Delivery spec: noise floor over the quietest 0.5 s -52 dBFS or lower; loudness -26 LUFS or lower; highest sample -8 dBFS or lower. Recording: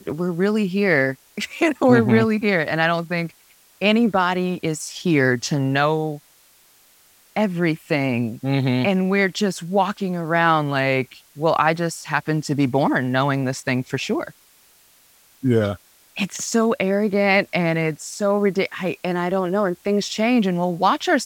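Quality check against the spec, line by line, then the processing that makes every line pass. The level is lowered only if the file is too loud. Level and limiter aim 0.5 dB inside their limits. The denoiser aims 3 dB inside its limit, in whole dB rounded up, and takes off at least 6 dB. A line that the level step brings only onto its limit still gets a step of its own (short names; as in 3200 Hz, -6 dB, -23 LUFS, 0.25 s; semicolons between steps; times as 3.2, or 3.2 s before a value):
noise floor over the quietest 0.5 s -55 dBFS: OK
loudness -20.5 LUFS: fail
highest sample -2.0 dBFS: fail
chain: gain -6 dB; limiter -8.5 dBFS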